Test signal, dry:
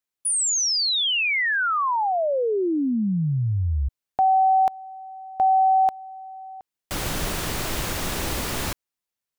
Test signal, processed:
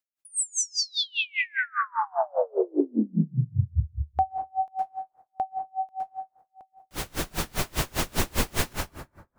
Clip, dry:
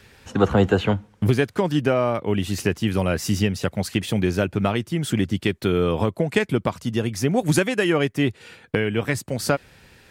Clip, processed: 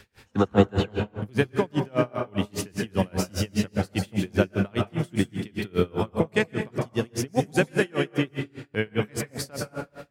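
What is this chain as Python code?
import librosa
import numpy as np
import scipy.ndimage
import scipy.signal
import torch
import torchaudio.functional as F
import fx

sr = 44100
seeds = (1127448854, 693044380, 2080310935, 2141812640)

y = fx.rider(x, sr, range_db=4, speed_s=2.0)
y = fx.rev_plate(y, sr, seeds[0], rt60_s=1.1, hf_ratio=0.55, predelay_ms=105, drr_db=3.0)
y = y * 10.0 ** (-33 * (0.5 - 0.5 * np.cos(2.0 * np.pi * 5.0 * np.arange(len(y)) / sr)) / 20.0)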